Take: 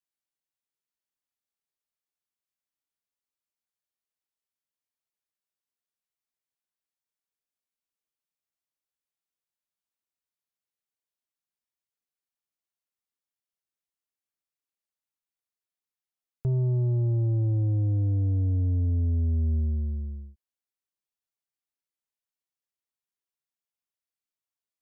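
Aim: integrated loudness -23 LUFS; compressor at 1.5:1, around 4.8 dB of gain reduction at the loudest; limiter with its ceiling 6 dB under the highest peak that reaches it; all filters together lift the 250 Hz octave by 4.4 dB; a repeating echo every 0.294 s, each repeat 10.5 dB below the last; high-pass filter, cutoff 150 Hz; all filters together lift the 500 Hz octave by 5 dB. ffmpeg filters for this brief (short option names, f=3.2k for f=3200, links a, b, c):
-af "highpass=150,equalizer=f=250:t=o:g=5,equalizer=f=500:t=o:g=5,acompressor=threshold=-39dB:ratio=1.5,alimiter=level_in=6.5dB:limit=-24dB:level=0:latency=1,volume=-6.5dB,aecho=1:1:294|588|882:0.299|0.0896|0.0269,volume=14dB"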